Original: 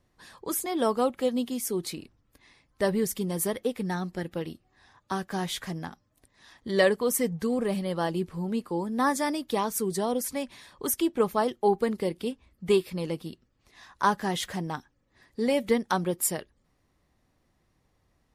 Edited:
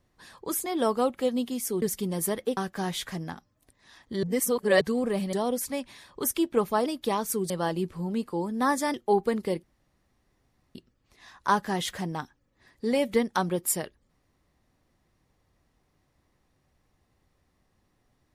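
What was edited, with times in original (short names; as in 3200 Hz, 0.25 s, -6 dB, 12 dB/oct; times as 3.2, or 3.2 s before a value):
1.82–3 cut
3.75–5.12 cut
6.78–7.36 reverse
7.88–9.32 swap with 9.96–11.49
12.18–13.3 room tone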